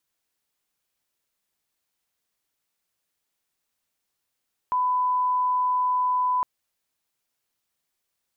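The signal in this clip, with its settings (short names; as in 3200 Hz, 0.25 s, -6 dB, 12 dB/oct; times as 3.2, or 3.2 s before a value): line-up tone -20 dBFS 1.71 s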